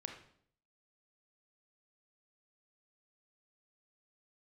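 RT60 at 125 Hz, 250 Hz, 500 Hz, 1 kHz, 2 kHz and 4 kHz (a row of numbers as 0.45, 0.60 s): 0.75, 0.75, 0.65, 0.60, 0.55, 0.55 s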